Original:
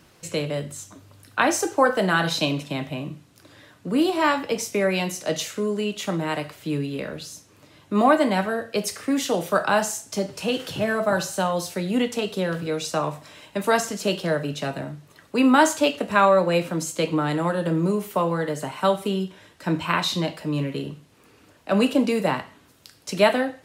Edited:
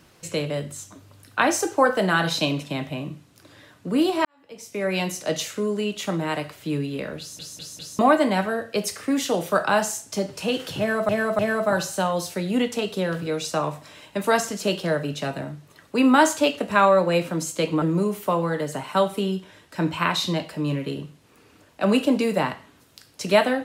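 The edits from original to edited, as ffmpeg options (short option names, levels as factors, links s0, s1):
-filter_complex "[0:a]asplit=9[s0][s1][s2][s3][s4][s5][s6][s7][s8];[s0]atrim=end=4.25,asetpts=PTS-STARTPTS,afade=t=out:st=4.246:d=0.004:c=hsin[s9];[s1]atrim=start=4.25:end=7.392,asetpts=PTS-STARTPTS,afade=t=in:d=0.74:c=qua[s10];[s2]atrim=start=7.188:end=7.392[s11];[s3]atrim=start=7.188:end=7.392[s12];[s4]atrim=start=7.188:end=7.392[s13];[s5]atrim=start=7.988:end=11.092[s14];[s6]atrim=start=10.788:end=11.092[s15];[s7]atrim=start=10.788:end=17.222[s16];[s8]atrim=start=17.698[s17];[s9][s10]concat=n=2:v=0:a=1[s18];[s18][s11]acrossfade=d=0.004:c1=hsin:c2=hsin[s19];[s19][s12]acrossfade=d=0.004:c1=hsin:c2=hsin[s20];[s20][s13]acrossfade=d=0.004:c1=hsin:c2=hsin[s21];[s21][s14]acrossfade=d=0.004:c1=hsin:c2=hsin[s22];[s22][s15]acrossfade=d=0.004:c1=hsin:c2=hsin[s23];[s23][s16]acrossfade=d=0.004:c1=hsin:c2=hsin[s24];[s24][s17]acrossfade=d=0.004:c1=hsin:c2=hsin"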